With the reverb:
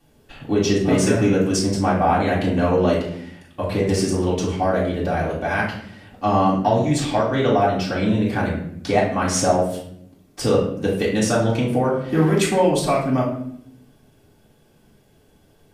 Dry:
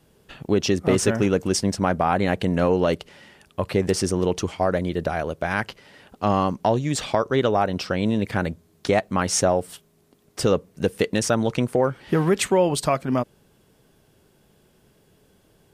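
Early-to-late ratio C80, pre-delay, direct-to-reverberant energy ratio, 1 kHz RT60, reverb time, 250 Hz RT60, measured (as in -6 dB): 8.0 dB, 3 ms, -6.5 dB, 0.60 s, 0.65 s, 1.2 s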